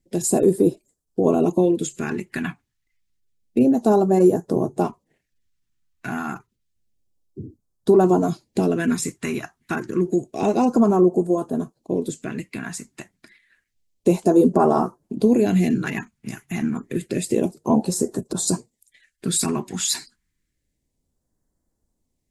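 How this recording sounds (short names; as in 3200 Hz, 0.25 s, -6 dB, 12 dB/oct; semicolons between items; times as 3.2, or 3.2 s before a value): phasing stages 2, 0.29 Hz, lowest notch 510–2300 Hz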